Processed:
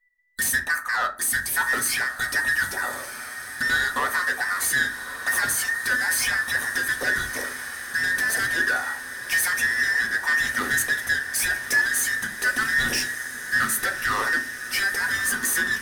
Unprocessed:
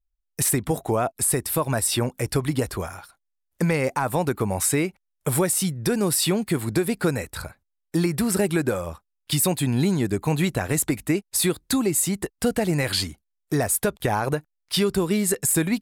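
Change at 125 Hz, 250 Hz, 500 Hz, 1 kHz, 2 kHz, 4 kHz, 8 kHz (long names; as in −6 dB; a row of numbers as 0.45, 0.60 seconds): −18.5, −16.5, −14.0, +0.5, +14.0, +0.5, −1.0 decibels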